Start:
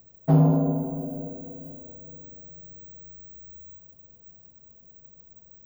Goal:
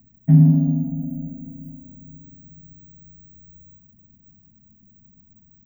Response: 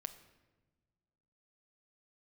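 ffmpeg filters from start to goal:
-af "firequalizer=gain_entry='entry(110,0);entry(230,8);entry(410,-29);entry(610,-16);entry(880,-18);entry(1200,-25);entry(1800,-2);entry(3500,-16);entry(8100,-26);entry(15000,-8)':delay=0.05:min_phase=1,volume=3.5dB"

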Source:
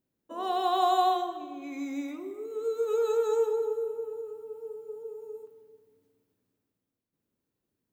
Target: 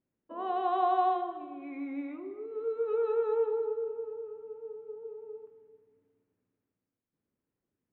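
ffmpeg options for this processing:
-af "lowpass=f=2.5k:w=0.5412,lowpass=f=2.5k:w=1.3066,volume=-2.5dB"

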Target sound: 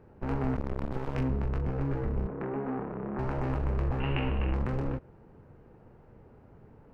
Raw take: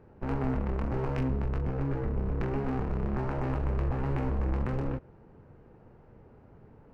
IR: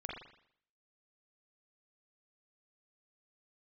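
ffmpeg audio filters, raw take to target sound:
-filter_complex "[0:a]asettb=1/sr,asplit=3[a][b][c];[a]atrim=end=0.564[d];[b]atrim=start=0.56:end=1.15,asetpts=PTS-STARTPTS,afade=t=in:d=0.004:c=qsin,afade=t=out:st=0.586:d=0.004:c=qsin,aeval=exprs='max(val(0),0)':c=same[e];[c]atrim=start=1.146[f];[d][e]acrossfade=d=0.004:c1=hsin:c2=qsin[g];[g][f]acrossfade=d=0.004:c1=qsin:c2=hsin,asettb=1/sr,asplit=3[h][i][j];[h]atrim=end=2.274[k];[i]atrim=start=2.27:end=3.19,asetpts=PTS-STARTPTS,afade=t=in:d=0.004:c=qsin,afade=t=out:st=0.916:d=0.004:c=qsin,acrossover=split=150 2200:gain=0.0708 1 0.0708[l][m][n];[l][m][n]amix=inputs=3:normalize=0[o];[j]atrim=start=3.186[p];[k][o]acrossfade=d=0.004:c1=hsin:c2=qsin[q];[q][p]acrossfade=d=0.004:c1=qsin:c2=hsin,asettb=1/sr,asplit=3[r][s][t];[r]atrim=end=4.004[u];[s]atrim=start=4:end=4.54,asetpts=PTS-STARTPTS,afade=t=in:d=0.004:c=qsin,afade=t=out:st=0.536:d=0.004:c=qsin,lowpass=f=2.8k:t=q:w=12[v];[t]atrim=start=4.536[w];[u][v]acrossfade=d=0.004:c1=hsin:c2=qsin[x];[x][w]acrossfade=d=0.004:c1=qsin:c2=hsin"

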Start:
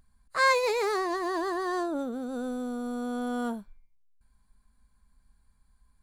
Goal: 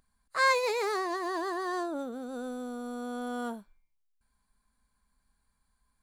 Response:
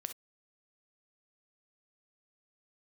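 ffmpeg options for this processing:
-af "lowshelf=f=180:g=-11,volume=-1.5dB"

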